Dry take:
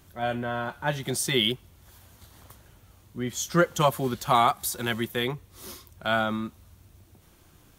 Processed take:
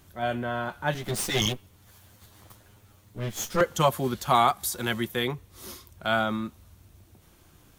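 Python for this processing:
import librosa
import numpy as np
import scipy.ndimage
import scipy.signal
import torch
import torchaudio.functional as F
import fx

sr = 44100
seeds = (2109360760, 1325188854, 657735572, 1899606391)

y = fx.lower_of_two(x, sr, delay_ms=9.7, at=(0.94, 3.61))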